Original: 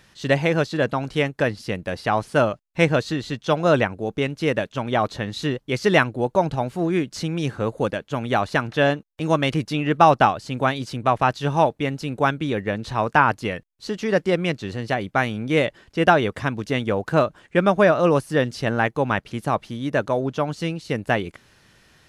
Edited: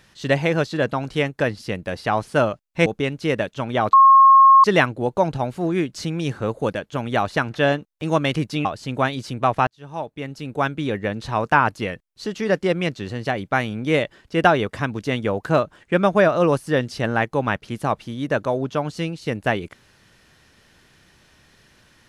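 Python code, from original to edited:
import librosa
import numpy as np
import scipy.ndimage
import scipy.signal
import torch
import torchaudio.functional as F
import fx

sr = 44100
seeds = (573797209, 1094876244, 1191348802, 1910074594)

y = fx.edit(x, sr, fx.cut(start_s=2.86, length_s=1.18),
    fx.bleep(start_s=5.11, length_s=0.71, hz=1080.0, db=-7.0),
    fx.cut(start_s=9.83, length_s=0.45),
    fx.fade_in_span(start_s=11.3, length_s=1.2), tone=tone)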